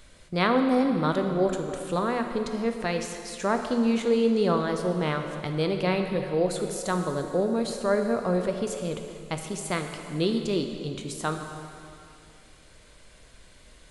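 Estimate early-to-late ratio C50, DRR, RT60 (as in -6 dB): 6.0 dB, 5.0 dB, 2.6 s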